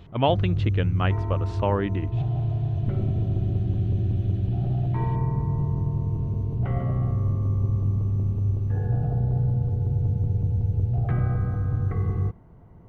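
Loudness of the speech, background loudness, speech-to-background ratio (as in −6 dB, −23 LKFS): −27.5 LKFS, −25.5 LKFS, −2.0 dB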